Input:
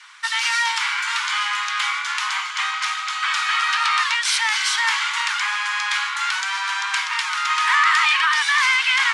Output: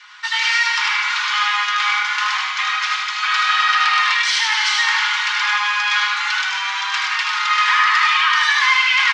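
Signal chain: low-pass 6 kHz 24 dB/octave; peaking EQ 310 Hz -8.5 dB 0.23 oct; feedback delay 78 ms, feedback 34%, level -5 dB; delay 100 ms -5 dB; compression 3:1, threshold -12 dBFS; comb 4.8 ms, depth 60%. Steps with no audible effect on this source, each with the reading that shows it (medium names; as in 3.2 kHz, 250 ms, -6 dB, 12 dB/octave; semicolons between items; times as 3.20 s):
peaking EQ 310 Hz: input has nothing below 760 Hz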